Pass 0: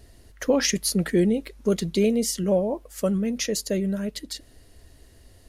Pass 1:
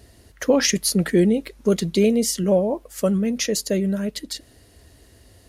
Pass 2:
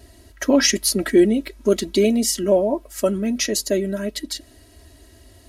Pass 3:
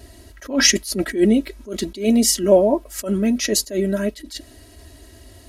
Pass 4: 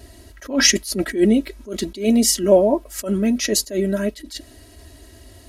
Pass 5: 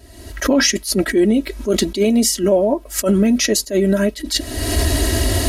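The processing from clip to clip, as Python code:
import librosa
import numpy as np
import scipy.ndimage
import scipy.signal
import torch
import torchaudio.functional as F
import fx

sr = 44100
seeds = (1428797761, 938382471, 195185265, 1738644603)

y1 = scipy.signal.sosfilt(scipy.signal.butter(2, 59.0, 'highpass', fs=sr, output='sos'), x)
y1 = y1 * 10.0 ** (3.5 / 20.0)
y2 = y1 + 0.86 * np.pad(y1, (int(3.1 * sr / 1000.0), 0))[:len(y1)]
y3 = fx.attack_slew(y2, sr, db_per_s=170.0)
y3 = y3 * 10.0 ** (4.0 / 20.0)
y4 = y3
y5 = fx.recorder_agc(y4, sr, target_db=-5.0, rise_db_per_s=45.0, max_gain_db=30)
y5 = y5 * 10.0 ** (-2.5 / 20.0)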